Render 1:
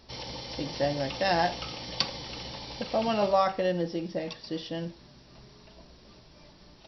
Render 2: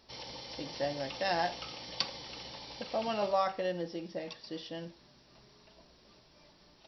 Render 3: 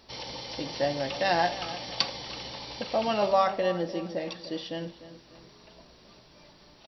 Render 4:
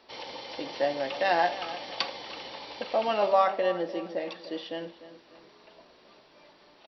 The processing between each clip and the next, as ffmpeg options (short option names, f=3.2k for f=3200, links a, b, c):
-af "lowshelf=f=220:g=-8,volume=-5dB"
-filter_complex "[0:a]bandreject=f=5.2k:w=16,asplit=2[a][b];[b]adelay=299,lowpass=f=2k:p=1,volume=-13.5dB,asplit=2[c][d];[d]adelay=299,lowpass=f=2k:p=1,volume=0.41,asplit=2[e][f];[f]adelay=299,lowpass=f=2k:p=1,volume=0.41,asplit=2[g][h];[h]adelay=299,lowpass=f=2k:p=1,volume=0.41[i];[a][c][e][g][i]amix=inputs=5:normalize=0,volume=6.5dB"
-filter_complex "[0:a]acrossover=split=260 4000:gain=0.141 1 0.178[a][b][c];[a][b][c]amix=inputs=3:normalize=0,volume=1dB"